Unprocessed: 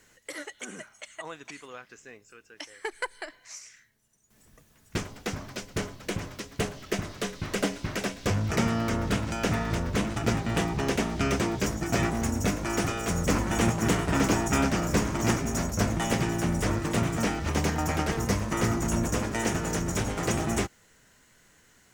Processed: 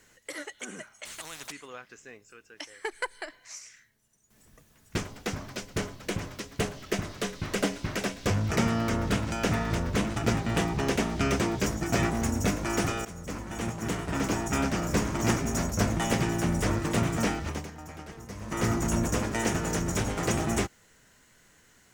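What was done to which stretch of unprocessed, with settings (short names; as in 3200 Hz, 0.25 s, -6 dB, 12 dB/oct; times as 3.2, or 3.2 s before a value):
1.05–1.52 spectral compressor 4:1
13.05–15.43 fade in, from -15.5 dB
17.31–18.7 dip -15.5 dB, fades 0.36 s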